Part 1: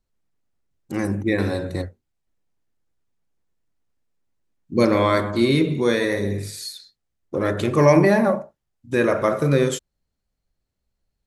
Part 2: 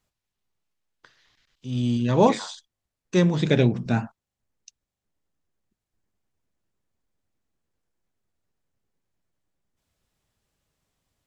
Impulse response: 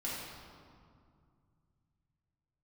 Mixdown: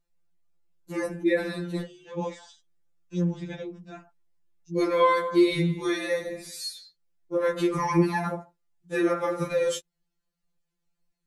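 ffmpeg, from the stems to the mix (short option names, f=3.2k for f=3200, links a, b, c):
-filter_complex "[0:a]alimiter=limit=-9dB:level=0:latency=1:release=114,volume=-1.5dB[a];[1:a]bandreject=f=4.2k:w=6.2,volume=-12dB[b];[a][b]amix=inputs=2:normalize=0,afftfilt=real='re*2.83*eq(mod(b,8),0)':imag='im*2.83*eq(mod(b,8),0)':win_size=2048:overlap=0.75"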